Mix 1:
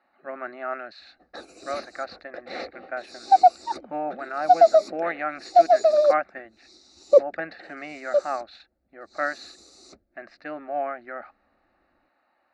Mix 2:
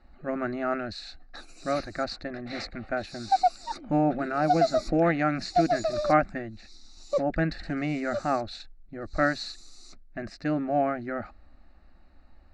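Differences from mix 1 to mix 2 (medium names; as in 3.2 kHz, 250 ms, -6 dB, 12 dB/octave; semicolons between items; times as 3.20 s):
speech: remove band-pass 590–2800 Hz; first sound +5.0 dB; second sound: add peaking EQ 470 Hz -14.5 dB 1.4 oct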